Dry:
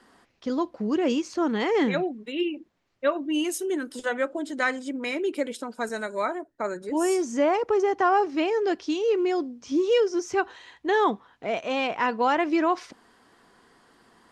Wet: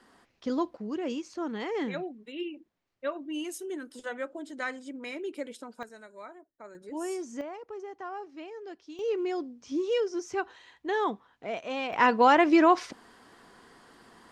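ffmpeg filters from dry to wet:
-af "asetnsamples=n=441:p=0,asendcmd='0.77 volume volume -9dB;5.83 volume volume -18dB;6.75 volume volume -10.5dB;7.41 volume volume -18dB;8.99 volume volume -6.5dB;11.93 volume volume 3dB',volume=0.75"

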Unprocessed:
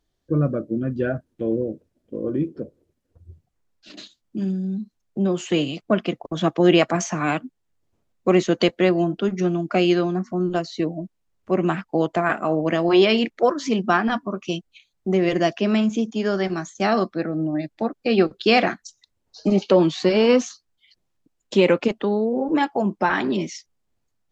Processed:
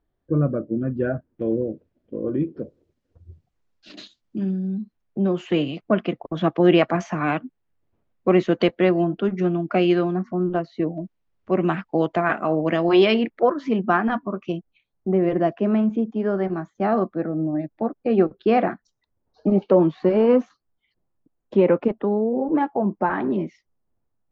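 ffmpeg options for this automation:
-af "asetnsamples=n=441:p=0,asendcmd='1.42 lowpass f 3000;2.6 lowpass f 5500;4.38 lowpass f 2600;10.43 lowpass f 1700;10.98 lowpass f 3500;13.14 lowpass f 1900;14.52 lowpass f 1200',lowpass=1700"

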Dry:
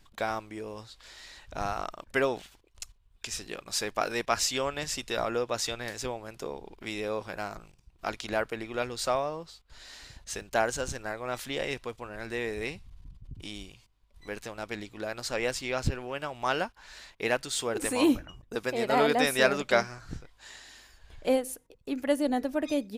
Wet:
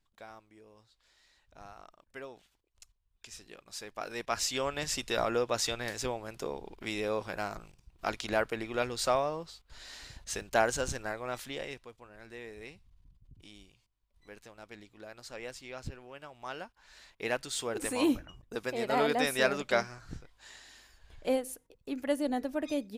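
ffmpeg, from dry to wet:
-af "volume=2.66,afade=t=in:st=2.34:d=1.01:silence=0.501187,afade=t=in:st=3.93:d=1.02:silence=0.251189,afade=t=out:st=10.93:d=0.94:silence=0.237137,afade=t=in:st=16.65:d=0.76:silence=0.375837"

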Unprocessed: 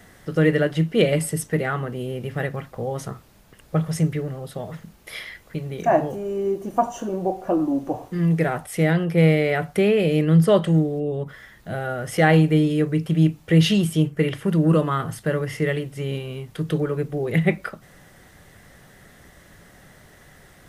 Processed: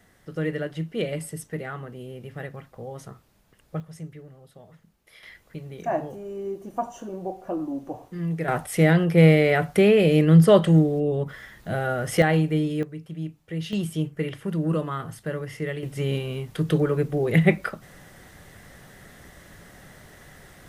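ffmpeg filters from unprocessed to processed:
-af "asetnsamples=n=441:p=0,asendcmd='3.8 volume volume -17dB;5.23 volume volume -8dB;8.48 volume volume 1.5dB;12.22 volume volume -5.5dB;12.83 volume volume -15dB;13.73 volume volume -7dB;15.83 volume volume 1.5dB',volume=0.335"

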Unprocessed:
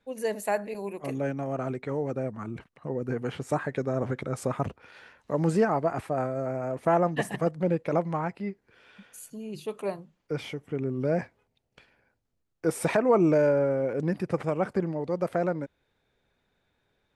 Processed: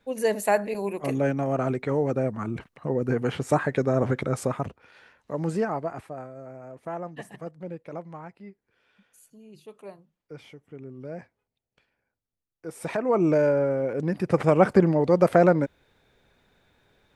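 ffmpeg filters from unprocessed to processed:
-af "volume=20,afade=t=out:st=4.28:d=0.41:silence=0.375837,afade=t=out:st=5.74:d=0.51:silence=0.398107,afade=t=in:st=12.69:d=0.65:silence=0.251189,afade=t=in:st=14.14:d=0.43:silence=0.375837"

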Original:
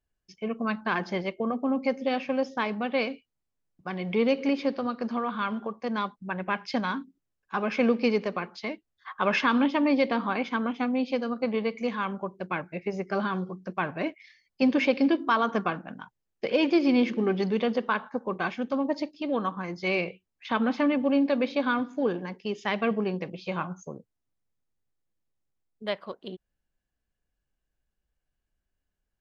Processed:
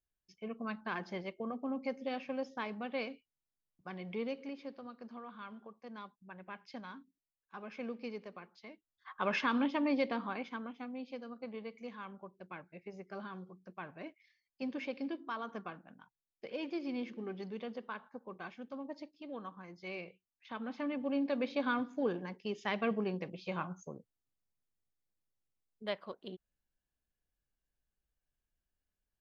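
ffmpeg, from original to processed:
-af "volume=2.66,afade=t=out:st=3.92:d=0.58:silence=0.421697,afade=t=in:st=8.72:d=0.45:silence=0.316228,afade=t=out:st=10.01:d=0.73:silence=0.398107,afade=t=in:st=20.62:d=1.07:silence=0.334965"

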